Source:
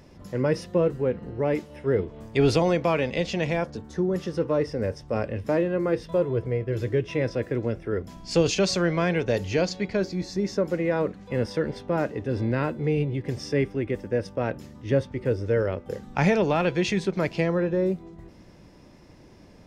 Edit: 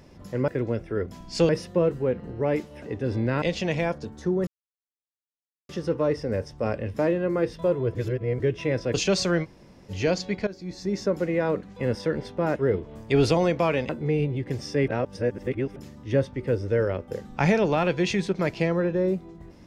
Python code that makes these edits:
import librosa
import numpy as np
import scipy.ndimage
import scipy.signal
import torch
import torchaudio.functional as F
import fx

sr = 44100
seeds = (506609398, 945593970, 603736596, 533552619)

y = fx.edit(x, sr, fx.swap(start_s=1.81, length_s=1.33, other_s=12.07, other_length_s=0.6),
    fx.insert_silence(at_s=4.19, length_s=1.22),
    fx.reverse_span(start_s=6.45, length_s=0.45),
    fx.move(start_s=7.44, length_s=1.01, to_s=0.48),
    fx.room_tone_fill(start_s=8.95, length_s=0.46, crossfade_s=0.04),
    fx.fade_in_from(start_s=9.98, length_s=0.5, floor_db=-16.5),
    fx.reverse_span(start_s=13.66, length_s=0.88), tone=tone)